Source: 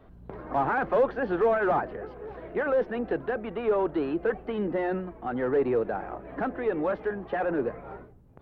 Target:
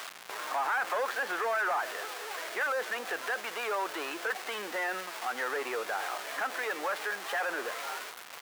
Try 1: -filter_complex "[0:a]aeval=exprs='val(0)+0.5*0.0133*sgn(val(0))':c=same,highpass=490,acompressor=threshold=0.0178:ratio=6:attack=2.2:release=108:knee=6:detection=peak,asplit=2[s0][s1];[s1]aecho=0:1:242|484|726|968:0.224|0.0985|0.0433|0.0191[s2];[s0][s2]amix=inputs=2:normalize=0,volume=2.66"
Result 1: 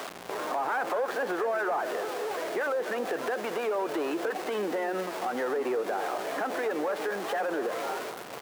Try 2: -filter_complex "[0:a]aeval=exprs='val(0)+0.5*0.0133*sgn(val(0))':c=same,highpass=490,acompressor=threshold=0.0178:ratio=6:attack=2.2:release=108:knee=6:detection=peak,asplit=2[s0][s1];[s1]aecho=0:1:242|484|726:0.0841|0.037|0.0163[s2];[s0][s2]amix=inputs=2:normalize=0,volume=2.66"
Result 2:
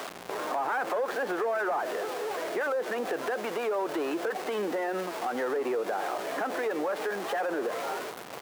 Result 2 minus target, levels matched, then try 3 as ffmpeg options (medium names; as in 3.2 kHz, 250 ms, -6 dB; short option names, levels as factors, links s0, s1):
500 Hz band +5.0 dB
-filter_complex "[0:a]aeval=exprs='val(0)+0.5*0.0133*sgn(val(0))':c=same,highpass=1300,acompressor=threshold=0.0178:ratio=6:attack=2.2:release=108:knee=6:detection=peak,asplit=2[s0][s1];[s1]aecho=0:1:242|484|726:0.0841|0.037|0.0163[s2];[s0][s2]amix=inputs=2:normalize=0,volume=2.66"